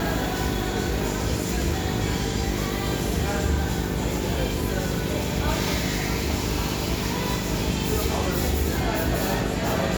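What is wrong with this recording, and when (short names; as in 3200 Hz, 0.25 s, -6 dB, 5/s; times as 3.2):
buzz 50 Hz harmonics 9 -30 dBFS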